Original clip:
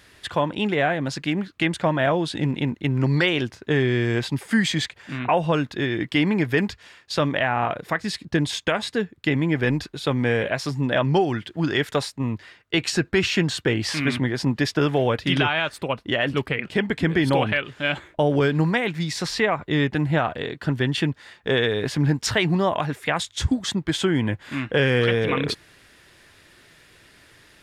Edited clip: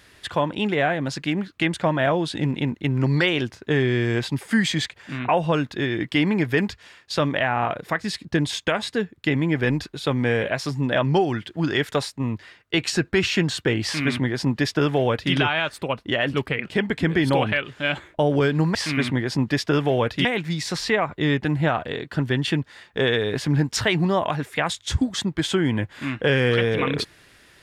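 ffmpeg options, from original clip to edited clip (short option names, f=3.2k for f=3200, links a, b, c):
-filter_complex "[0:a]asplit=3[a][b][c];[a]atrim=end=18.752[d];[b]atrim=start=13.828:end=15.332[e];[c]atrim=start=18.748[f];[d][e]acrossfade=d=0.004:c1=hsin:c2=hsin[g];[g][f]acrossfade=d=0.004:c1=hsin:c2=hsin"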